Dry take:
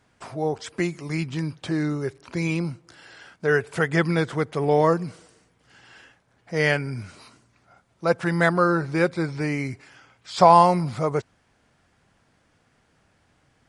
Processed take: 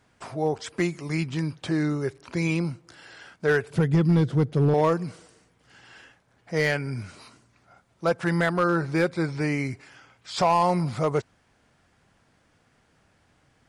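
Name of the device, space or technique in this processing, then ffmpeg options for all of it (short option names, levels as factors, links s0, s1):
limiter into clipper: -filter_complex "[0:a]asettb=1/sr,asplit=3[s0][s1][s2];[s0]atrim=end=3.704[s3];[s1]atrim=start=3.7:end=4.74,asetpts=PTS-STARTPTS,afade=t=in:d=0.004:c=qsin,afade=t=out:st=1.036:d=0.004:c=qsin,equalizer=f=125:t=o:w=1:g=10,equalizer=f=250:t=o:w=1:g=4,equalizer=f=1000:t=o:w=1:g=-9,equalizer=f=2000:t=o:w=1:g=-8,equalizer=f=8000:t=o:w=1:g=-8[s4];[s2]atrim=start=4.736[s5];[s3][s4]acrossfade=d=0.004:c1=hsin:c2=qsin[s6];[s6][s5]acrossfade=d=0.004:c1=qsin:c2=hsin,alimiter=limit=0.299:level=0:latency=1:release=216,asoftclip=type=hard:threshold=0.2"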